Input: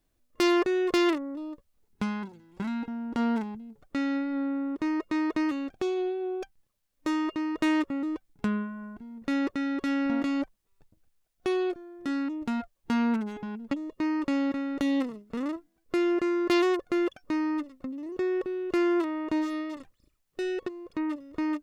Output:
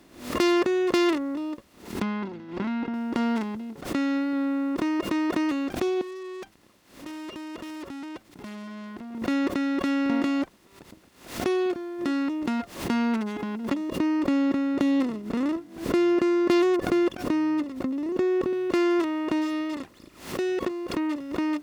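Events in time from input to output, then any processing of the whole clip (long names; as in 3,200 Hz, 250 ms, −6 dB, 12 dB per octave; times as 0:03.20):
0:02.02–0:02.94: high-frequency loss of the air 270 metres
0:06.01–0:09.15: tube saturation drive 47 dB, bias 0.35
0:13.90–0:18.53: tilt shelving filter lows +4.5 dB, about 660 Hz
whole clip: compressor on every frequency bin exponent 0.6; high-pass filter 46 Hz; background raised ahead of every attack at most 110 dB per second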